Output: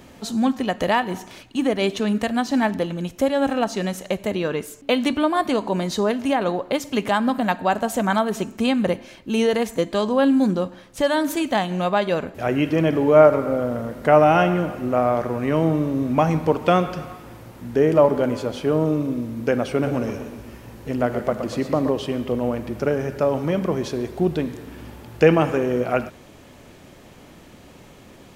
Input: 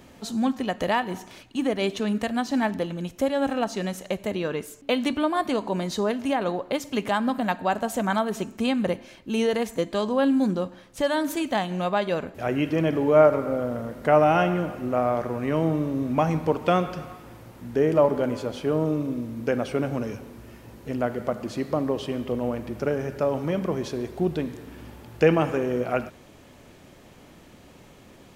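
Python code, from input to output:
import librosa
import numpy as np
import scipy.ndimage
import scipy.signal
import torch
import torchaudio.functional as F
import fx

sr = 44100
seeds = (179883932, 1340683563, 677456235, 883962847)

y = fx.echo_warbled(x, sr, ms=122, feedback_pct=49, rate_hz=2.8, cents=86, wet_db=-9, at=(19.71, 21.9))
y = y * librosa.db_to_amplitude(4.0)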